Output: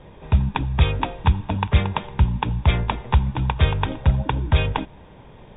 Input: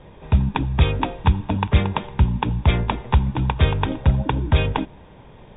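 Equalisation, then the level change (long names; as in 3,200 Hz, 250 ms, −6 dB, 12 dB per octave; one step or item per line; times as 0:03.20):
dynamic equaliser 290 Hz, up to −5 dB, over −33 dBFS, Q 0.96
0.0 dB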